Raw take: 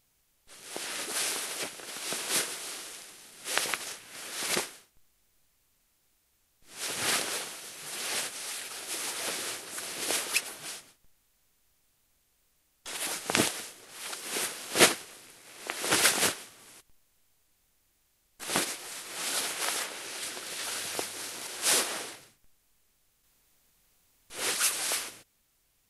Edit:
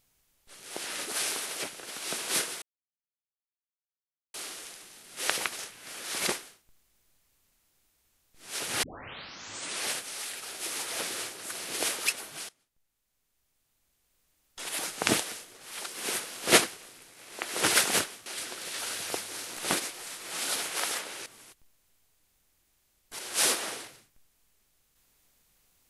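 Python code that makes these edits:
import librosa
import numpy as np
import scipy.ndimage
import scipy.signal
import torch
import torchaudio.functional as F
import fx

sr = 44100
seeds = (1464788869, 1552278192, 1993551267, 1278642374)

y = fx.edit(x, sr, fx.insert_silence(at_s=2.62, length_s=1.72),
    fx.tape_start(start_s=7.11, length_s=1.01),
    fx.fade_in_from(start_s=10.77, length_s=2.18, floor_db=-19.0),
    fx.swap(start_s=16.54, length_s=1.88, other_s=20.11, other_length_s=1.31), tone=tone)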